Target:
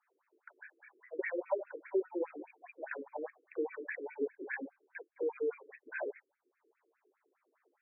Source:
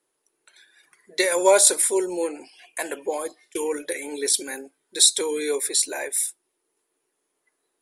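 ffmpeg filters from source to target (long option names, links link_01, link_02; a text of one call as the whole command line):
ffmpeg -i in.wav -af "flanger=delay=22.5:depth=3.8:speed=0.78,acompressor=threshold=-41dB:ratio=4,afftfilt=real='re*between(b*sr/1024,340*pow(1900/340,0.5+0.5*sin(2*PI*4.9*pts/sr))/1.41,340*pow(1900/340,0.5+0.5*sin(2*PI*4.9*pts/sr))*1.41)':imag='im*between(b*sr/1024,340*pow(1900/340,0.5+0.5*sin(2*PI*4.9*pts/sr))/1.41,340*pow(1900/340,0.5+0.5*sin(2*PI*4.9*pts/sr))*1.41)':win_size=1024:overlap=0.75,volume=10dB" out.wav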